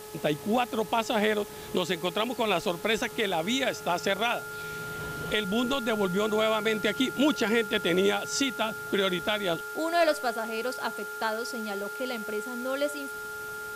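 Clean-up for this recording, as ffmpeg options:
-af "adeclick=t=4,bandreject=f=425.3:t=h:w=4,bandreject=f=850.6:t=h:w=4,bandreject=f=1275.9:t=h:w=4,bandreject=f=1701.2:t=h:w=4,bandreject=f=1400:w=30,afwtdn=0.0045"

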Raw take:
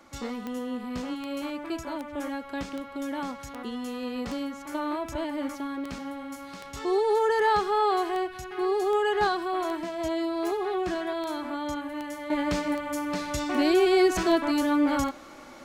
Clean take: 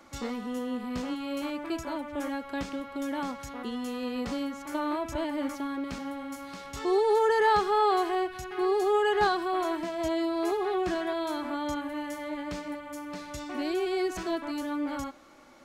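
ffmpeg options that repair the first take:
-af "adeclick=t=4,asetnsamples=n=441:p=0,asendcmd='12.3 volume volume -8.5dB',volume=1"

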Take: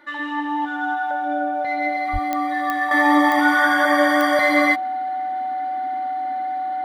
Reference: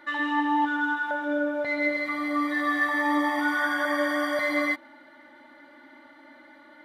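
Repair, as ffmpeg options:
-filter_complex "[0:a]adeclick=t=4,bandreject=f=750:w=30,asplit=3[s0][s1][s2];[s0]afade=t=out:st=2.12:d=0.02[s3];[s1]highpass=f=140:w=0.5412,highpass=f=140:w=1.3066,afade=t=in:st=2.12:d=0.02,afade=t=out:st=2.24:d=0.02[s4];[s2]afade=t=in:st=2.24:d=0.02[s5];[s3][s4][s5]amix=inputs=3:normalize=0,asetnsamples=n=441:p=0,asendcmd='2.91 volume volume -8.5dB',volume=1"

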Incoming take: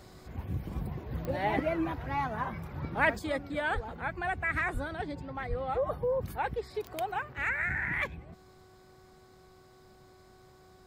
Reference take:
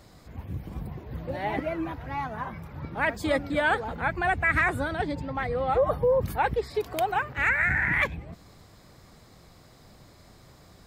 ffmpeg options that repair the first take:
-filter_complex "[0:a]adeclick=t=4,bandreject=f=372.8:t=h:w=4,bandreject=f=745.6:t=h:w=4,bandreject=f=1118.4:t=h:w=4,bandreject=f=1491.2:t=h:w=4,asplit=3[s0][s1][s2];[s0]afade=t=out:st=3.74:d=0.02[s3];[s1]highpass=f=140:w=0.5412,highpass=f=140:w=1.3066,afade=t=in:st=3.74:d=0.02,afade=t=out:st=3.86:d=0.02[s4];[s2]afade=t=in:st=3.86:d=0.02[s5];[s3][s4][s5]amix=inputs=3:normalize=0,asplit=3[s6][s7][s8];[s6]afade=t=out:st=4.73:d=0.02[s9];[s7]highpass=f=140:w=0.5412,highpass=f=140:w=1.3066,afade=t=in:st=4.73:d=0.02,afade=t=out:st=4.85:d=0.02[s10];[s8]afade=t=in:st=4.85:d=0.02[s11];[s9][s10][s11]amix=inputs=3:normalize=0,asplit=3[s12][s13][s14];[s12]afade=t=out:st=5.49:d=0.02[s15];[s13]highpass=f=140:w=0.5412,highpass=f=140:w=1.3066,afade=t=in:st=5.49:d=0.02,afade=t=out:st=5.61:d=0.02[s16];[s14]afade=t=in:st=5.61:d=0.02[s17];[s15][s16][s17]amix=inputs=3:normalize=0,asetnsamples=n=441:p=0,asendcmd='3.19 volume volume 7.5dB',volume=1"

